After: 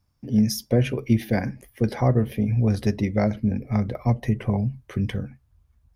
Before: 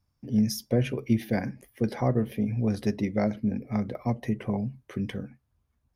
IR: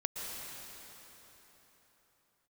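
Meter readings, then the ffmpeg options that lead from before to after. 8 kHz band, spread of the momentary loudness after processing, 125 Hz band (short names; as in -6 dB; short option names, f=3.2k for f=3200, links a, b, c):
n/a, 7 LU, +7.0 dB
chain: -af "asubboost=boost=3.5:cutoff=120,volume=4.5dB"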